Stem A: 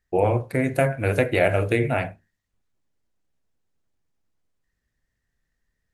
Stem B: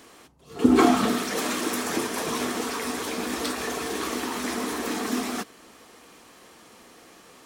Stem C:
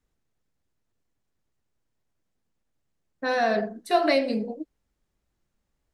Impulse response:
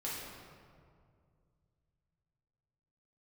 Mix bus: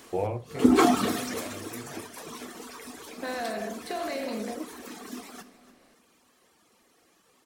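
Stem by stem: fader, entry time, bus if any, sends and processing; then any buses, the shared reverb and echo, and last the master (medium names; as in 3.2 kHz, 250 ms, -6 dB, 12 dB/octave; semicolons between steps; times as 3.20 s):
-4.0 dB, 0.00 s, no send, no echo send, auto duck -19 dB, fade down 0.90 s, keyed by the third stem
1.17 s -1.5 dB -> 1.52 s -12 dB, 0.00 s, send -15.5 dB, echo send -16 dB, reverb removal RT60 1.2 s; treble shelf 6.9 kHz +4 dB
-6.0 dB, 0.00 s, no send, no echo send, spectral levelling over time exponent 0.6; peak limiter -19 dBFS, peak gain reduction 10.5 dB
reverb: on, RT60 2.2 s, pre-delay 5 ms
echo: feedback delay 289 ms, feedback 39%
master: none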